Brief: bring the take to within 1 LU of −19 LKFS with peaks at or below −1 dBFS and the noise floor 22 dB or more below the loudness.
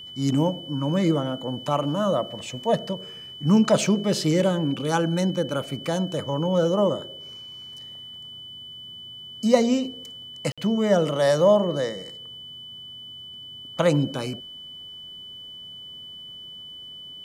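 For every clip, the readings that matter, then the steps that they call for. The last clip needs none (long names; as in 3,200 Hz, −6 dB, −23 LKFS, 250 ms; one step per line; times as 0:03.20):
number of dropouts 1; longest dropout 56 ms; interfering tone 3,000 Hz; level of the tone −38 dBFS; integrated loudness −23.5 LKFS; sample peak −4.5 dBFS; target loudness −19.0 LKFS
→ repair the gap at 0:10.52, 56 ms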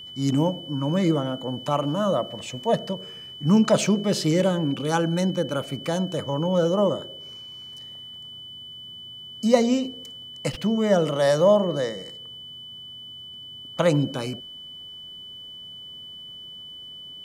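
number of dropouts 0; interfering tone 3,000 Hz; level of the tone −38 dBFS
→ notch filter 3,000 Hz, Q 30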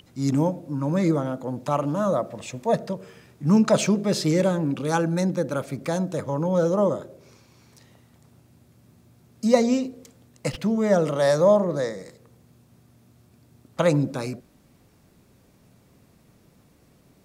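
interfering tone none found; integrated loudness −23.5 LKFS; sample peak −4.5 dBFS; target loudness −19.0 LKFS
→ level +4.5 dB
brickwall limiter −1 dBFS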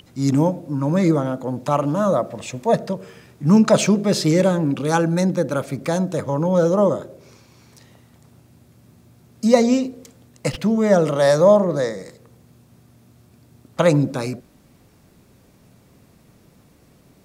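integrated loudness −19.0 LKFS; sample peak −1.0 dBFS; background noise floor −54 dBFS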